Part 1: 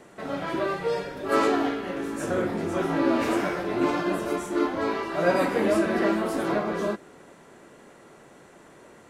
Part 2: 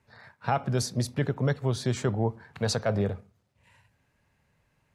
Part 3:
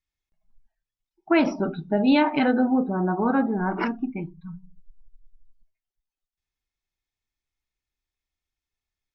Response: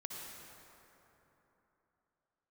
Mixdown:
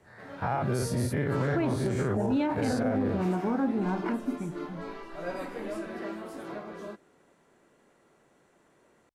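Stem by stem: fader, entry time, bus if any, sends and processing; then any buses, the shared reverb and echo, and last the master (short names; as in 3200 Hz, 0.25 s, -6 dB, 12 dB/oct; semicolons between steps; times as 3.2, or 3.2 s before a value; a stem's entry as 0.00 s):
-13.5 dB, 0.00 s, no send, dry
-4.5 dB, 0.00 s, no send, spectral dilation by 0.12 s; band shelf 4500 Hz -9.5 dB
-7.0 dB, 0.25 s, no send, Wiener smoothing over 9 samples; tilt shelf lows +4.5 dB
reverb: off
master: limiter -19.5 dBFS, peak gain reduction 8.5 dB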